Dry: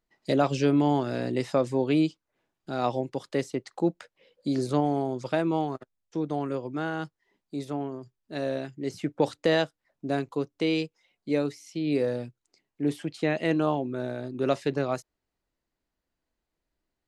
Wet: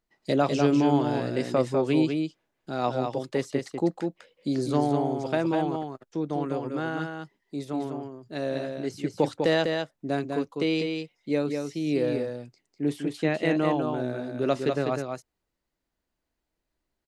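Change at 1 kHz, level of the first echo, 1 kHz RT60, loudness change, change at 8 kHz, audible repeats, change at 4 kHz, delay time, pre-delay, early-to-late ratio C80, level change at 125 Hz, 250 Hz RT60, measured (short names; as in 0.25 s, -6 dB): +1.0 dB, -5.0 dB, none, +1.0 dB, +1.0 dB, 1, +1.0 dB, 0.199 s, none, none, +1.0 dB, none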